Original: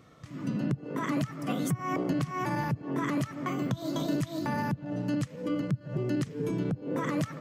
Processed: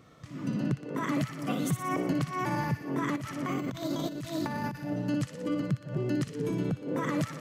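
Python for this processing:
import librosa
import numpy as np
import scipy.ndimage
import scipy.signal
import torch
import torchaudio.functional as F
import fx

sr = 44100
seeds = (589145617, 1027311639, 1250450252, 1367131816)

p1 = x + fx.echo_wet_highpass(x, sr, ms=60, feedback_pct=67, hz=1700.0, wet_db=-7, dry=0)
y = fx.over_compress(p1, sr, threshold_db=-32.0, ratio=-0.5, at=(3.16, 4.94))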